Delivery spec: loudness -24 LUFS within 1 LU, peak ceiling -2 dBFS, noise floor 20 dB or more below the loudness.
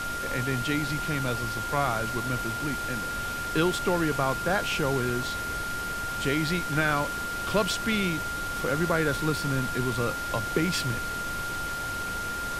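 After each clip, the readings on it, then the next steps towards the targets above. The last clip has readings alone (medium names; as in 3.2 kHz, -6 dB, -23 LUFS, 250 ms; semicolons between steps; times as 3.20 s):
steady tone 1.4 kHz; tone level -31 dBFS; noise floor -33 dBFS; noise floor target -48 dBFS; loudness -28.0 LUFS; peak level -10.5 dBFS; loudness target -24.0 LUFS
-> band-stop 1.4 kHz, Q 30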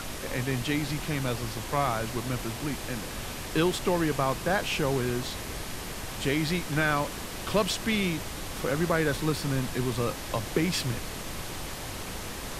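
steady tone not found; noise floor -38 dBFS; noise floor target -50 dBFS
-> noise print and reduce 12 dB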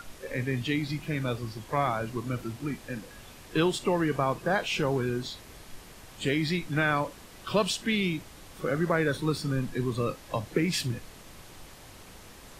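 noise floor -49 dBFS; noise floor target -50 dBFS
-> noise print and reduce 6 dB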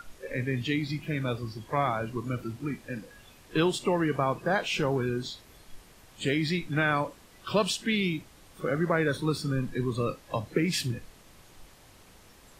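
noise floor -55 dBFS; loudness -29.5 LUFS; peak level -12.0 dBFS; loudness target -24.0 LUFS
-> trim +5.5 dB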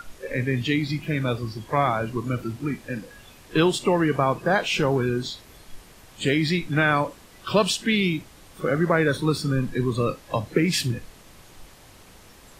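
loudness -24.0 LUFS; peak level -6.5 dBFS; noise floor -50 dBFS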